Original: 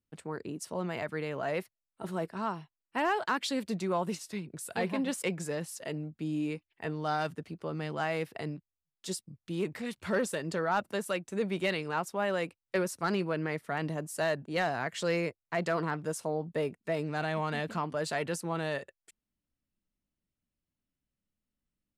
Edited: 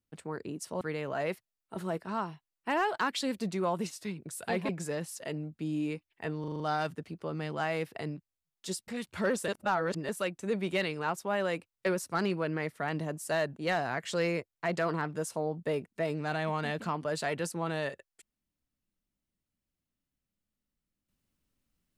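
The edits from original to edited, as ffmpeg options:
-filter_complex "[0:a]asplit=11[a][b][c][d][e][f][g][h][i][j][k];[a]atrim=end=0.812[l];[b]atrim=start=1.088:end=4.972[m];[c]atrim=start=5.288:end=7.042[n];[d]atrim=start=6.998:end=7.042[o];[e]atrim=start=6.998:end=7.042[p];[f]atrim=start=6.998:end=7.042[q];[g]atrim=start=6.998:end=7.042[r];[h]atrim=start=6.998:end=9.282[s];[i]atrim=start=9.768:end=10.372[t];[j]atrim=start=10.368:end=10.982,asetpts=PTS-STARTPTS,areverse[u];[k]atrim=start=10.978[v];[l][m]acrossfade=d=0.004:c1=hsin:c2=hsin[w];[w][n]acrossfade=d=0.004:c1=hsin:c2=hsin[x];[x][o]acrossfade=d=0.004:c1=hsin:c2=hsin[y];[y][p]acrossfade=d=0.004:c1=hsin:c2=hsin[z];[z][q]acrossfade=d=0.004:c1=hsin:c2=hsin[aa];[aa][r]acrossfade=d=0.004:c1=hsin:c2=hsin[ab];[ab][s]acrossfade=d=0.004:c1=hsin:c2=hsin[ac];[ac][t]acrossfade=d=0.004:c1=hsin:c2=hsin[ad];[ad][u]acrossfade=d=0.004:c1=hsin:c2=hsin[ae];[ae][v]acrossfade=d=0.004:c1=hsin:c2=hsin"

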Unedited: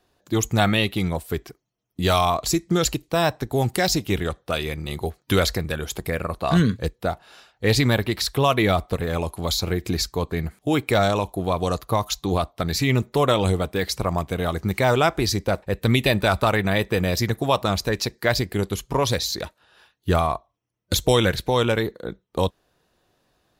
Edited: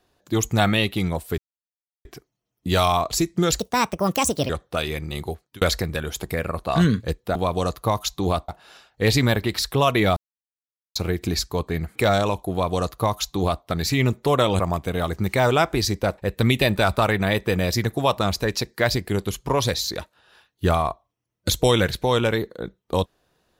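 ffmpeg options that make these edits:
-filter_complex "[0:a]asplit=11[a][b][c][d][e][f][g][h][i][j][k];[a]atrim=end=1.38,asetpts=PTS-STARTPTS,afade=t=out:st=1.376:d=0.004:c=hsin,apad=pad_dur=0.67[l];[b]atrim=start=1.38:end=2.924,asetpts=PTS-STARTPTS,afade=t=in:d=0.004:c=hsin[m];[c]atrim=start=2.92:end=4.25,asetpts=PTS-STARTPTS,asetrate=64827,aresample=44100[n];[d]atrim=start=4.246:end=5.37,asetpts=PTS-STARTPTS,afade=t=out:st=0.704:d=0.42[o];[e]atrim=start=5.37:end=7.112,asetpts=PTS-STARTPTS,afade=t=in:d=0.004:c=hsin[p];[f]atrim=start=11.408:end=12.542[q];[g]atrim=start=7.108:end=8.79,asetpts=PTS-STARTPTS,afade=t=out:st=1.678:d=0.004:c=hsin[r];[h]atrim=start=8.79:end=9.58,asetpts=PTS-STARTPTS,volume=0[s];[i]atrim=start=9.58:end=10.582,asetpts=PTS-STARTPTS,afade=t=in:d=0.004:c=hsin[t];[j]atrim=start=10.848:end=13.492[u];[k]atrim=start=14.038[v];[l][m]concat=n=2:v=0:a=1[w];[w][n]acrossfade=d=0.004:c1=hsin:c2=hsin[x];[o][p]concat=n=2:v=0:a=1[y];[x][y]acrossfade=d=0.004:c1=hsin:c2=hsin[z];[z][q]acrossfade=d=0.004:c1=hsin:c2=hsin[aa];[r][s][t]concat=n=3:v=0:a=1[ab];[aa][ab]acrossfade=d=0.004:c1=hsin:c2=hsin[ac];[ac][u]acrossfade=d=0.004:c1=hsin:c2=hsin[ad];[ad][v]acrossfade=d=0.004:c1=hsin:c2=hsin"

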